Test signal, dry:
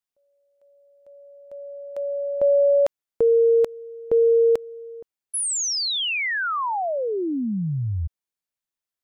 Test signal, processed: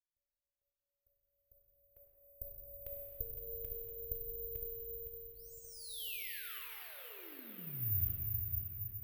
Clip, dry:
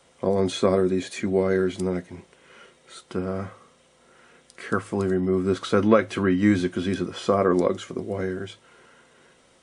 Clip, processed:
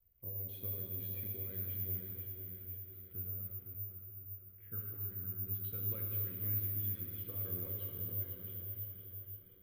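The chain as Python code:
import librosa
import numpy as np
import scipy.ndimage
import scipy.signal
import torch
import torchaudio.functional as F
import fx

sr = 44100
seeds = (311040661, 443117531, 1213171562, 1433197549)

y = fx.tone_stack(x, sr, knobs='10-0-1')
y = fx.env_lowpass(y, sr, base_hz=1500.0, full_db=-38.0)
y = fx.hpss(y, sr, part='percussive', gain_db=7)
y = fx.curve_eq(y, sr, hz=(100.0, 210.0, 430.0, 850.0, 1700.0, 2900.0, 6400.0), db=(0, -20, -14, -13, -11, -7, -22))
y = fx.rider(y, sr, range_db=3, speed_s=0.5)
y = fx.echo_feedback(y, sr, ms=510, feedback_pct=47, wet_db=-9)
y = fx.rev_plate(y, sr, seeds[0], rt60_s=4.0, hf_ratio=0.85, predelay_ms=0, drr_db=-1.5)
y = (np.kron(y[::3], np.eye(3)[0]) * 3)[:len(y)]
y = y * librosa.db_to_amplitude(-1.0)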